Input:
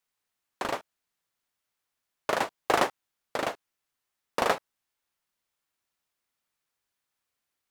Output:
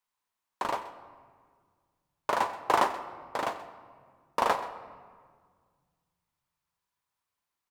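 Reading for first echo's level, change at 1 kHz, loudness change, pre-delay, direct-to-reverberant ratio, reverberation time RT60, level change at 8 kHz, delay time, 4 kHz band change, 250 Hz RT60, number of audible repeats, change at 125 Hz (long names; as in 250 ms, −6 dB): −17.0 dB, +2.5 dB, −0.5 dB, 9 ms, 8.5 dB, 1.8 s, −4.0 dB, 129 ms, −4.0 dB, 2.7 s, 1, −3.5 dB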